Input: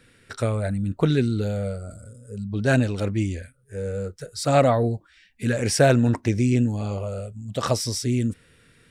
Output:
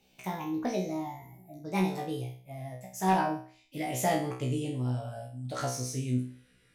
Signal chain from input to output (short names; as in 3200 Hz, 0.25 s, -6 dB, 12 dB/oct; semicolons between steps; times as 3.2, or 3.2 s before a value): speed glide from 161% -> 103%; resonator 63 Hz, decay 0.44 s, harmonics all, mix 100%; overloaded stage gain 19 dB